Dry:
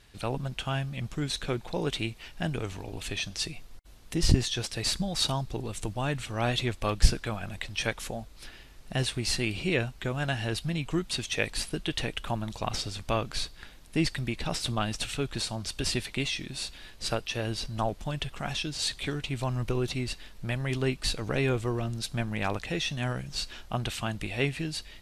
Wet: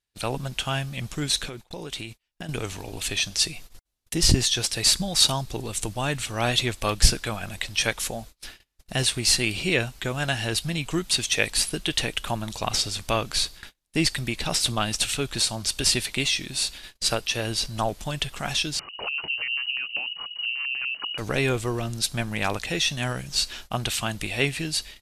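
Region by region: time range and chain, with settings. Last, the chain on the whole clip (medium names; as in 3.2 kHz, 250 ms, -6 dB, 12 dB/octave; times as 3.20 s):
1.48–2.49 s: gate -39 dBFS, range -9 dB + compression 16:1, threshold -34 dBFS
18.79–21.18 s: compression 16:1, threshold -33 dBFS + LFO low-pass square 5.1 Hz 240–1900 Hz + frequency inversion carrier 2.9 kHz
whole clip: bass shelf 320 Hz -3 dB; gate -46 dBFS, range -33 dB; treble shelf 4 kHz +9.5 dB; trim +4 dB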